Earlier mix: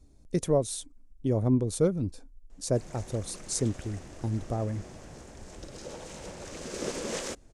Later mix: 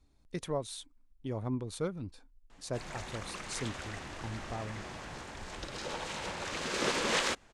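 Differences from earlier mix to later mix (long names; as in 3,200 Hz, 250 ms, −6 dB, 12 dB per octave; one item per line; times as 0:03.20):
speech −10.5 dB
master: add flat-topped bell 1,900 Hz +10 dB 2.7 octaves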